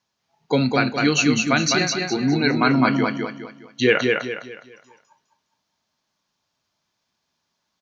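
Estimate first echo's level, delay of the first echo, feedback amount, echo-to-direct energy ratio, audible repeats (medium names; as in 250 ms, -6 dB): -3.5 dB, 206 ms, 36%, -3.0 dB, 4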